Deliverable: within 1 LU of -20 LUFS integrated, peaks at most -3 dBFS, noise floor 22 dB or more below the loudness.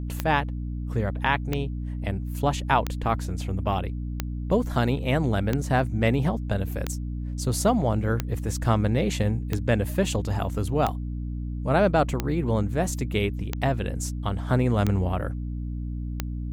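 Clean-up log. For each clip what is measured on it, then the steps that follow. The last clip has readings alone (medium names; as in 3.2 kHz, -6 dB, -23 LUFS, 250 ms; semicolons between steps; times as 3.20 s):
clicks found 13; hum 60 Hz; highest harmonic 300 Hz; hum level -28 dBFS; loudness -26.5 LUFS; peak level -7.5 dBFS; loudness target -20.0 LUFS
-> de-click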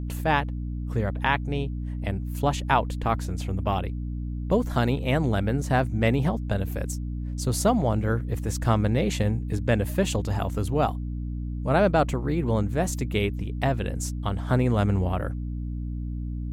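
clicks found 0; hum 60 Hz; highest harmonic 300 Hz; hum level -28 dBFS
-> de-hum 60 Hz, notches 5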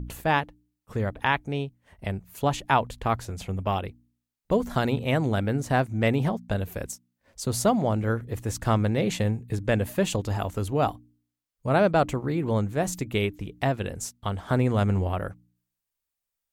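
hum not found; loudness -27.0 LUFS; peak level -8.0 dBFS; loudness target -20.0 LUFS
-> trim +7 dB; peak limiter -3 dBFS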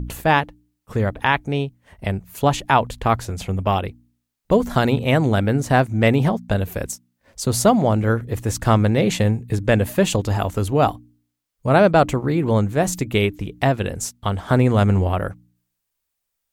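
loudness -20.0 LUFS; peak level -3.0 dBFS; noise floor -78 dBFS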